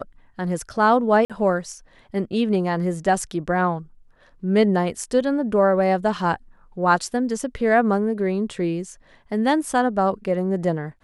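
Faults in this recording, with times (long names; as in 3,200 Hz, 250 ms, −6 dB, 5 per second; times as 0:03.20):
0:01.25–0:01.30: drop-out 47 ms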